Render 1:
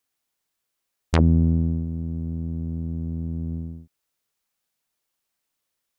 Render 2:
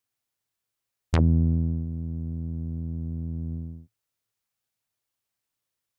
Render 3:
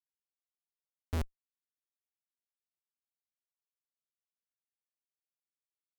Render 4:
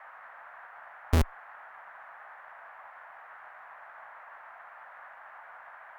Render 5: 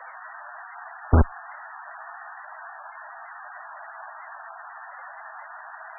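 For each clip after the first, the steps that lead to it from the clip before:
parametric band 110 Hz +13.5 dB 0.38 octaves; level −5 dB
downward compressor 20 to 1, threshold −28 dBFS, peak gain reduction 14 dB; comparator with hysteresis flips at −33 dBFS; level +6.5 dB
noise in a band 650–1,800 Hz −59 dBFS; harmonic generator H 2 −8 dB, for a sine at −27.5 dBFS; level +10 dB
level +7.5 dB; MP3 8 kbit/s 24,000 Hz

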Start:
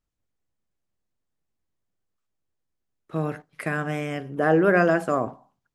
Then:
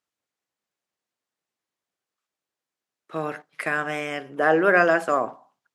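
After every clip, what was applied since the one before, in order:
meter weighting curve A
level +3.5 dB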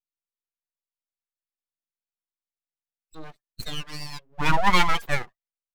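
spectral dynamics exaggerated over time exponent 3
full-wave rectification
level +5.5 dB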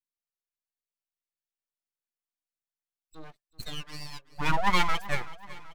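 repeating echo 381 ms, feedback 54%, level −18 dB
level −5 dB

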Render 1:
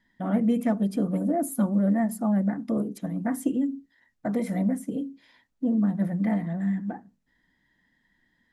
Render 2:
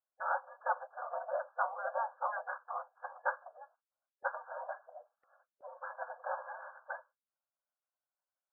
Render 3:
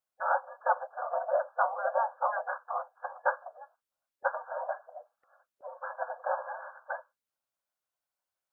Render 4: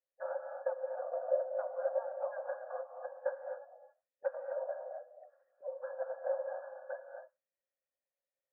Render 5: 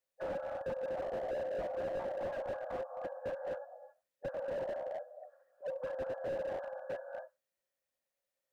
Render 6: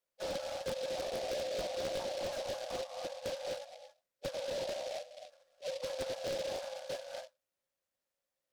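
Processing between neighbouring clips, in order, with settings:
brick-wall band-pass 510–1,700 Hz; noise gate with hold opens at −60 dBFS; gate on every frequency bin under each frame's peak −10 dB weak; level +9 dB
dynamic equaliser 610 Hz, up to +5 dB, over −49 dBFS, Q 1.2; level +3.5 dB
downward compressor 4 to 1, threshold −31 dBFS, peak gain reduction 9 dB; formant resonators in series e; reverb whose tail is shaped and stops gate 290 ms rising, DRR 4.5 dB; level +7 dB
slew-rate limiting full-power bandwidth 5.9 Hz; level +4.5 dB
in parallel at −7 dB: bit reduction 5 bits; on the sum: short delay modulated by noise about 3,600 Hz, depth 0.085 ms

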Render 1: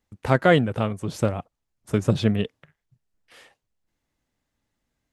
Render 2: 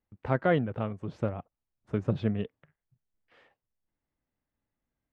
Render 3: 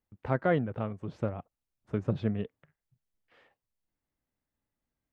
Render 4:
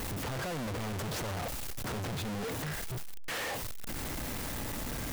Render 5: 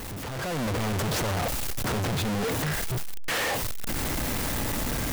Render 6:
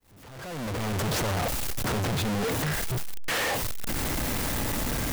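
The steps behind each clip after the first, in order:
Bessel low-pass filter 1,900 Hz, order 2; level −7.5 dB
dynamic equaliser 3,000 Hz, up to −4 dB, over −51 dBFS, Q 2; level −1.5 dB
sign of each sample alone
automatic gain control gain up to 8.5 dB
fade in at the beginning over 1.07 s

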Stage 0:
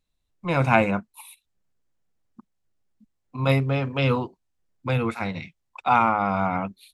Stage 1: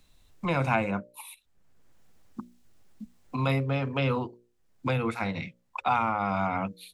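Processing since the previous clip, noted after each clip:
mains-hum notches 60/120/180/240/300/360/420/480/540/600 Hz
multiband upward and downward compressor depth 70%
level −4 dB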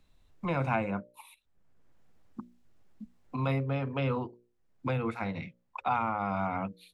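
high-shelf EQ 3,500 Hz −10.5 dB
level −3 dB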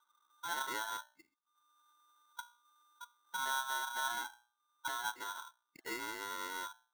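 formant resonators in series u
ring modulator with a square carrier 1,200 Hz
level +2 dB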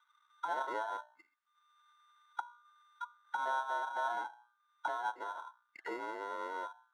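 envelope filter 610–2,100 Hz, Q 2.5, down, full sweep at −41.5 dBFS
level +12 dB

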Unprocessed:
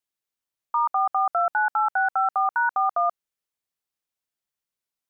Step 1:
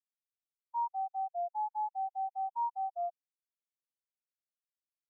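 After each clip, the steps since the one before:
elliptic low-pass filter 990 Hz, stop band 40 dB
every bin expanded away from the loudest bin 2.5 to 1
level −7.5 dB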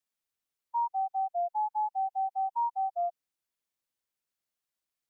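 downward compressor 2 to 1, threshold −35 dBFS, peak gain reduction 3 dB
level +6.5 dB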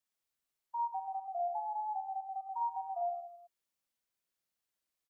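brickwall limiter −31 dBFS, peak gain reduction 7 dB
reverse bouncing-ball delay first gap 50 ms, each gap 1.2×, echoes 5
level −2 dB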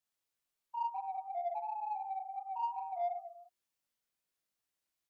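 chorus effect 2.8 Hz, delay 18 ms, depth 3.6 ms
in parallel at −8.5 dB: soft clipping −39.5 dBFS, distortion −10 dB

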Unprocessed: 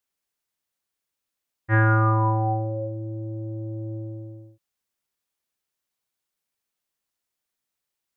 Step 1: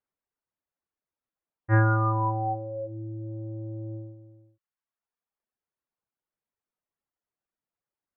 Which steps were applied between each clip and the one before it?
low-pass filter 1,400 Hz 12 dB per octave
reverb reduction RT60 0.96 s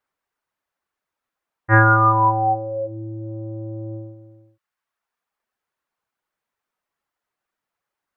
parametric band 1,400 Hz +9.5 dB 2.6 octaves
level +4 dB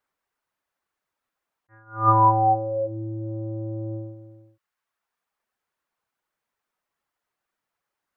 level that may rise only so fast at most 170 dB per second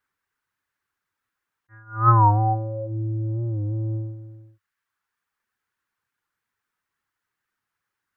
graphic EQ with 15 bands 100 Hz +8 dB, 630 Hz −10 dB, 1,600 Hz +6 dB
wow of a warped record 45 rpm, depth 100 cents

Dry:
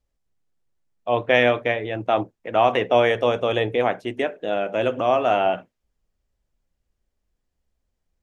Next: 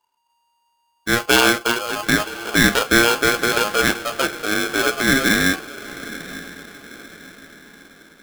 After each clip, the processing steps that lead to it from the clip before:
feedback delay with all-pass diffusion 936 ms, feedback 44%, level −15.5 dB
ring modulator with a square carrier 940 Hz
level +2.5 dB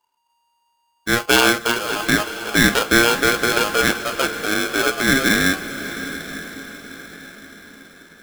feedback delay with all-pass diffusion 584 ms, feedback 47%, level −14 dB

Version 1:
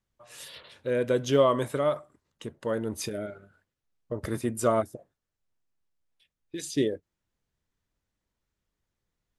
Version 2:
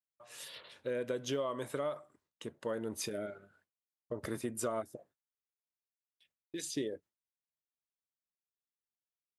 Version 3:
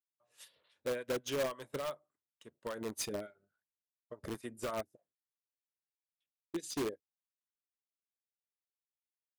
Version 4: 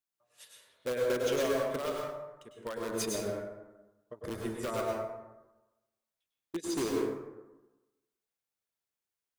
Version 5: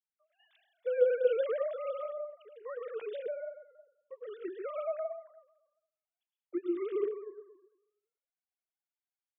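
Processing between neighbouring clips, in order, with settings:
high-pass filter 200 Hz 6 dB per octave; noise gate with hold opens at −56 dBFS; downward compressor 6 to 1, threshold −29 dBFS, peak gain reduction 12 dB; level −3.5 dB
two-band tremolo in antiphase 3.5 Hz, depth 70%, crossover 760 Hz; in parallel at −5 dB: wrap-around overflow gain 33.5 dB; on the sum: expander for the loud parts 2.5 to 1, over −49 dBFS; level +3.5 dB
dense smooth reverb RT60 1.1 s, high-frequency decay 0.45×, pre-delay 90 ms, DRR −1.5 dB; level +1.5 dB
three sine waves on the formant tracks

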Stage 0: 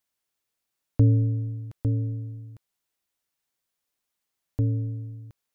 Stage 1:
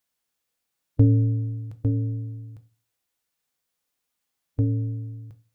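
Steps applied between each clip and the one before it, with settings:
on a send at −9 dB: convolution reverb RT60 0.30 s, pre-delay 3 ms
on the sum: harmonic and percussive parts rebalanced harmonic +3 dB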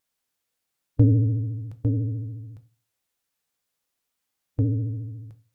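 pitch vibrato 14 Hz 97 cents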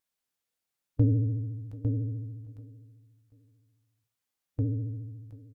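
repeating echo 736 ms, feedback 28%, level −20.5 dB
level −6 dB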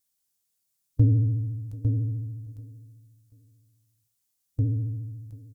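bass and treble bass +9 dB, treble +15 dB
level −4 dB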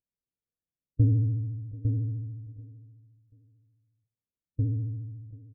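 Butterworth low-pass 580 Hz 36 dB per octave
level −2.5 dB

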